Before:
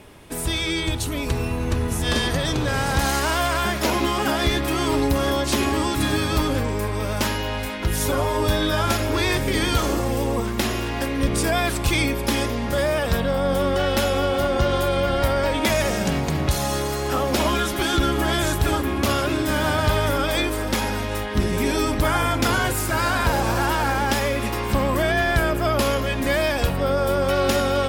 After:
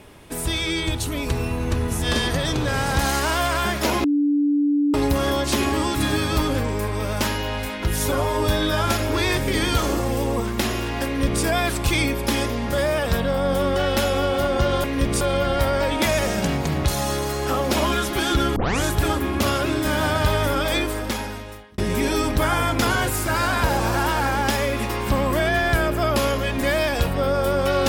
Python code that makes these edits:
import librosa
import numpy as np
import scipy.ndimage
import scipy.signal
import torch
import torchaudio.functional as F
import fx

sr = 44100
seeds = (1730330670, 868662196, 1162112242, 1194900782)

y = fx.edit(x, sr, fx.bleep(start_s=4.04, length_s=0.9, hz=290.0, db=-16.0),
    fx.duplicate(start_s=11.06, length_s=0.37, to_s=14.84),
    fx.tape_start(start_s=18.19, length_s=0.27),
    fx.fade_out_span(start_s=20.45, length_s=0.96), tone=tone)